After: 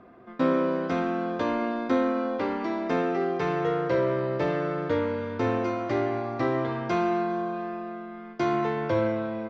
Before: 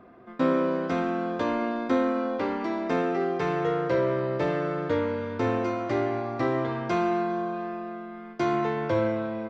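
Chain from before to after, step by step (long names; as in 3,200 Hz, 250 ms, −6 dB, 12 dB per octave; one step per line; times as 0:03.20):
low-pass filter 7,000 Hz 24 dB per octave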